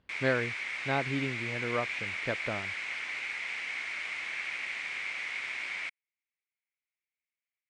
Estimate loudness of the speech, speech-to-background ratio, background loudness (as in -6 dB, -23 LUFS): -35.0 LUFS, -0.5 dB, -34.5 LUFS